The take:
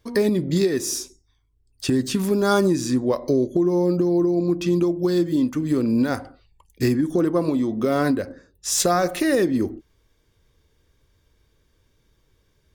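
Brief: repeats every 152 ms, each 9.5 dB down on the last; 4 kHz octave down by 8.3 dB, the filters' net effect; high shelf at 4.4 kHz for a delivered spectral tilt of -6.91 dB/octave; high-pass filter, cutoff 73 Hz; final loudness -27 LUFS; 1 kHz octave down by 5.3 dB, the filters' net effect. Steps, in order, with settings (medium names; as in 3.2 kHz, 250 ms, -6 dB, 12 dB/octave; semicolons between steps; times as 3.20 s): high-pass 73 Hz; peaking EQ 1 kHz -7.5 dB; peaking EQ 4 kHz -6.5 dB; treble shelf 4.4 kHz -6.5 dB; feedback delay 152 ms, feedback 33%, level -9.5 dB; trim -5 dB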